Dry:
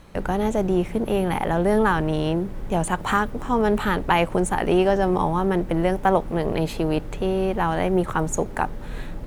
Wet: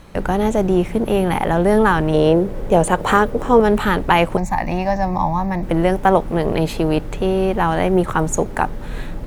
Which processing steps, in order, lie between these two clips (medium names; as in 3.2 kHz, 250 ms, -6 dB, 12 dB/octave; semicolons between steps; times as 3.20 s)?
2.14–3.60 s: peaking EQ 500 Hz +10 dB 0.78 oct; 4.37–5.63 s: static phaser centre 2.1 kHz, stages 8; trim +5 dB